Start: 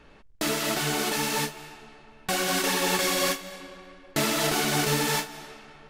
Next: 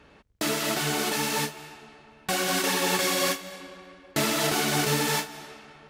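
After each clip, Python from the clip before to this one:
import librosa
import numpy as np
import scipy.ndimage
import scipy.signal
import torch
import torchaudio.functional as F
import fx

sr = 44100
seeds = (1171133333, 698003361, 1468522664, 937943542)

y = scipy.signal.sosfilt(scipy.signal.butter(2, 53.0, 'highpass', fs=sr, output='sos'), x)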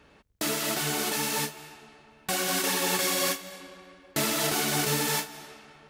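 y = fx.high_shelf(x, sr, hz=7200.0, db=6.5)
y = y * 10.0 ** (-3.0 / 20.0)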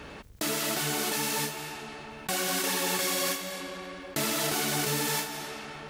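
y = fx.env_flatten(x, sr, amount_pct=50)
y = y * 10.0 ** (-3.0 / 20.0)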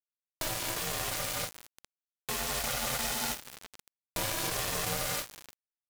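y = x * np.sin(2.0 * np.pi * 320.0 * np.arange(len(x)) / sr)
y = np.where(np.abs(y) >= 10.0 ** (-30.5 / 20.0), y, 0.0)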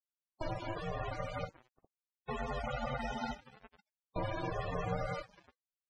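y = fx.spec_topn(x, sr, count=32)
y = fx.spacing_loss(y, sr, db_at_10k=23)
y = y * 10.0 ** (2.5 / 20.0)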